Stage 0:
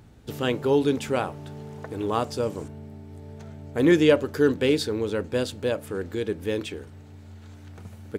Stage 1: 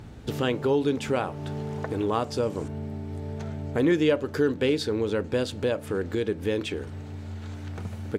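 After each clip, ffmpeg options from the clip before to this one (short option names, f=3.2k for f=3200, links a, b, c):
-af "highshelf=f=9.3k:g=-10,acompressor=threshold=-37dB:ratio=2,volume=8dB"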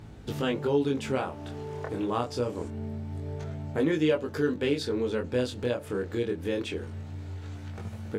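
-af "flanger=delay=19:depth=6.3:speed=0.25"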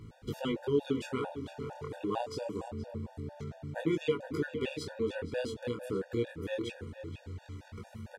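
-filter_complex "[0:a]asplit=2[a][b];[b]adelay=472.3,volume=-10dB,highshelf=f=4k:g=-10.6[c];[a][c]amix=inputs=2:normalize=0,afftfilt=real='re*gt(sin(2*PI*4.4*pts/sr)*(1-2*mod(floor(b*sr/1024/480),2)),0)':imag='im*gt(sin(2*PI*4.4*pts/sr)*(1-2*mod(floor(b*sr/1024/480),2)),0)':win_size=1024:overlap=0.75,volume=-2.5dB"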